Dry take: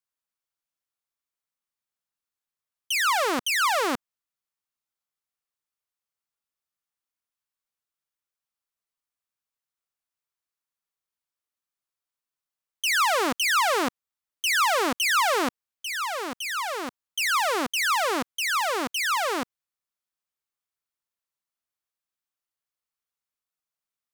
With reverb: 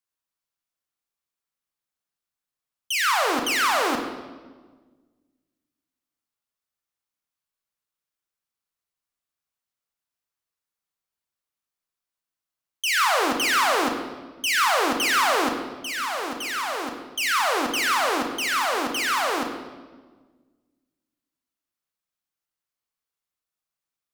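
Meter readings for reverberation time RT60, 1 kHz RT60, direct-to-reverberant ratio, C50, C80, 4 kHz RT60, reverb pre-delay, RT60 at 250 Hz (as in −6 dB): 1.4 s, 1.3 s, 3.5 dB, 6.0 dB, 7.5 dB, 1.1 s, 24 ms, 1.9 s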